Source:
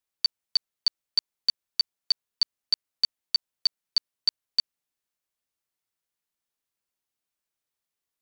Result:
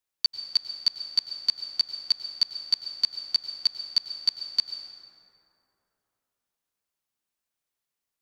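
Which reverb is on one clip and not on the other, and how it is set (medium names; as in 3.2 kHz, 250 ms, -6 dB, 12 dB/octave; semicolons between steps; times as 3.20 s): plate-style reverb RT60 3.2 s, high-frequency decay 0.4×, pre-delay 85 ms, DRR 6 dB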